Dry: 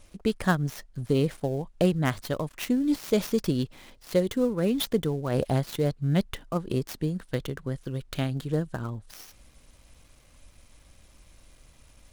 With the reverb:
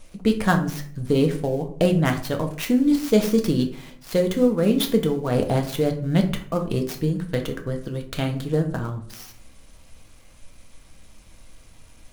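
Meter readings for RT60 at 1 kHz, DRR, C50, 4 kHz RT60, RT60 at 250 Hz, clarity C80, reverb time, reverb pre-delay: 0.50 s, 3.5 dB, 11.0 dB, 0.30 s, 0.65 s, 15.0 dB, 0.55 s, 4 ms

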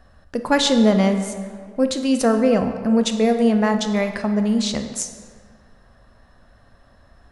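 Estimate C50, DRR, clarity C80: 8.0 dB, 6.5 dB, 9.5 dB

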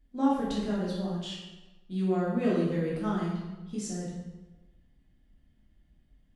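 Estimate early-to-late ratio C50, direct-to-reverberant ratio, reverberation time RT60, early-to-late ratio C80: 0.5 dB, -7.0 dB, 1.1 s, 3.5 dB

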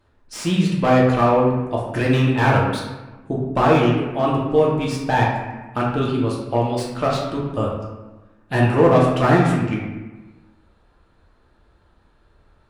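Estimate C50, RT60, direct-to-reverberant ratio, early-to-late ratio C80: 2.0 dB, 1.2 s, -4.5 dB, 4.5 dB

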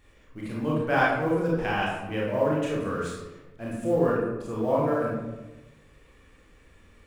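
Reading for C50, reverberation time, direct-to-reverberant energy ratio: 0.0 dB, 1.1 s, -5.0 dB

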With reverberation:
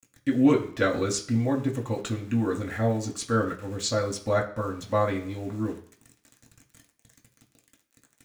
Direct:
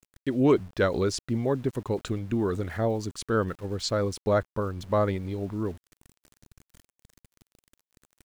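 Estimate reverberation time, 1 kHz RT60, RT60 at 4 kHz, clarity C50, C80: 0.55 s, 0.55 s, 0.55 s, 12.0 dB, 15.5 dB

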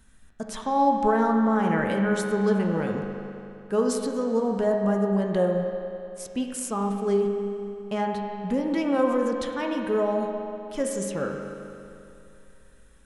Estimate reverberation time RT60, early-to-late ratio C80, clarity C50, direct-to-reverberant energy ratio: 2.7 s, 3.5 dB, 2.5 dB, 1.0 dB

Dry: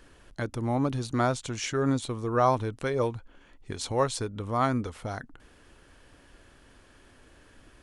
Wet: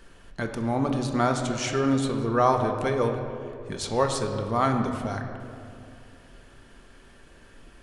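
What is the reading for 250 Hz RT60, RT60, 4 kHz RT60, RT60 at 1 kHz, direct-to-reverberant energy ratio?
2.8 s, 2.4 s, 1.3 s, 2.2 s, 3.0 dB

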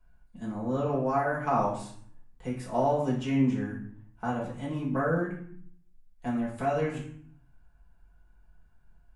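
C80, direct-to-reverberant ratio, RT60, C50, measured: 9.5 dB, -6.5 dB, 0.60 s, 6.0 dB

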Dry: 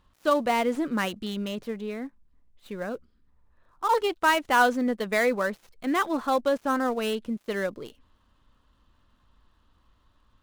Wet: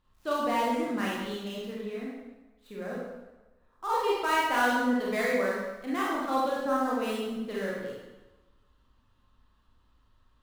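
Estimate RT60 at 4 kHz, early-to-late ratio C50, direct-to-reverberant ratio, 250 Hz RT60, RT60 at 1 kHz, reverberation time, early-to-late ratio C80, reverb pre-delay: 0.95 s, -1.0 dB, -5.5 dB, 1.1 s, 1.1 s, 1.1 s, 2.5 dB, 25 ms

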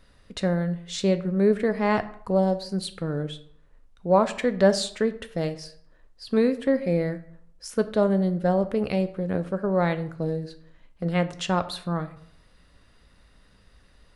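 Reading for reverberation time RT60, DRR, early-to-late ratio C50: 0.60 s, 10.0 dB, 15.0 dB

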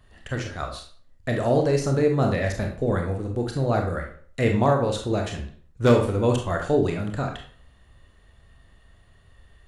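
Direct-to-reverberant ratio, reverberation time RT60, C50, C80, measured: 2.0 dB, 0.45 s, 6.5 dB, 11.0 dB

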